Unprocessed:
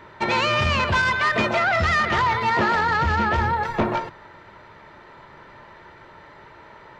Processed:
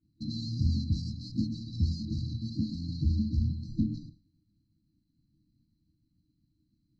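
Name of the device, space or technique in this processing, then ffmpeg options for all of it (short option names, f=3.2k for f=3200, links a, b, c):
hearing-loss simulation: -af "lowpass=3.1k,agate=range=-33dB:threshold=-35dB:ratio=3:detection=peak,afftfilt=real='re*(1-between(b*sr/4096,330,3900))':imag='im*(1-between(b*sr/4096,330,3900))':win_size=4096:overlap=0.75,volume=-2dB"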